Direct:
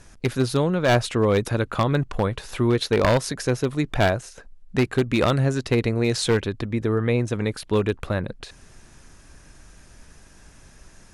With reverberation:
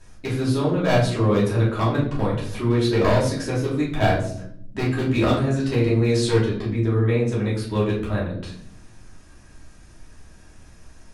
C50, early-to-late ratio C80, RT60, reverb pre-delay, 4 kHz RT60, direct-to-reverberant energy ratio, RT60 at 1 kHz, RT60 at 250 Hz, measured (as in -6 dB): 5.0 dB, 9.0 dB, 0.65 s, 3 ms, 0.45 s, -8.0 dB, 0.55 s, 1.2 s